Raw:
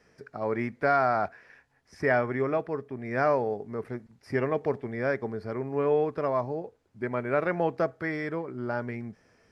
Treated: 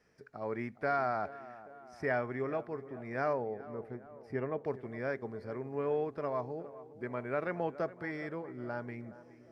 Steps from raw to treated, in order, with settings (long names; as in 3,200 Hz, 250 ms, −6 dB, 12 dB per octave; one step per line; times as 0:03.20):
0:03.33–0:04.65: high-shelf EQ 2,600 Hz −11 dB
tape delay 415 ms, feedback 67%, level −15 dB, low-pass 1,500 Hz
level −8 dB